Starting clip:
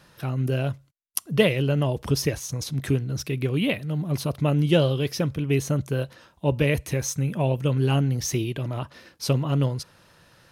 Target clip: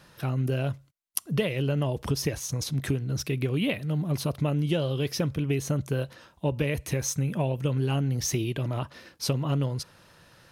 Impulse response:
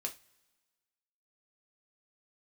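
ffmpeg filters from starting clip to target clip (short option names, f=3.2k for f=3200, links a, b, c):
-af "acompressor=threshold=-22dB:ratio=10"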